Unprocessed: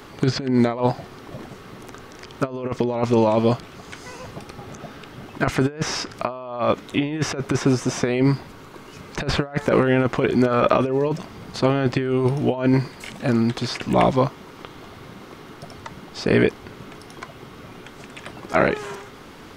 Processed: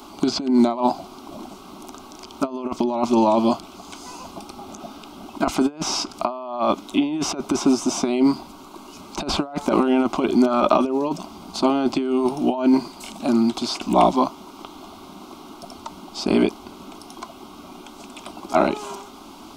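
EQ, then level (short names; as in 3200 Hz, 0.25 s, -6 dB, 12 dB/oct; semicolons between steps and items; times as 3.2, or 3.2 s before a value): low shelf 110 Hz -8.5 dB; fixed phaser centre 480 Hz, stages 6; +4.5 dB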